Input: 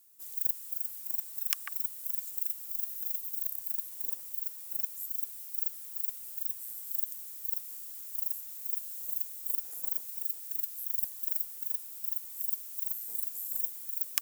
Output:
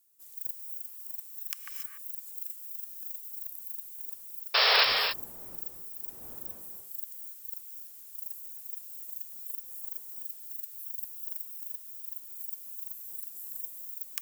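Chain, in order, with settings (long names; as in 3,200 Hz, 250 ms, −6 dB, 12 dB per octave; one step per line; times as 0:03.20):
0:04.72–0:06.79: wind on the microphone 620 Hz −48 dBFS
0:04.54–0:04.84: sound drawn into the spectrogram noise 400–5,500 Hz −16 dBFS
reverb whose tail is shaped and stops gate 310 ms rising, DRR 4 dB
level −6.5 dB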